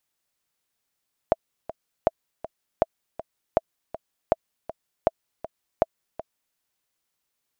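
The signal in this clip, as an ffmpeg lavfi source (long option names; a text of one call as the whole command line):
ffmpeg -f lavfi -i "aevalsrc='pow(10,(-5-15*gte(mod(t,2*60/160),60/160))/20)*sin(2*PI*651*mod(t,60/160))*exp(-6.91*mod(t,60/160)/0.03)':duration=5.25:sample_rate=44100" out.wav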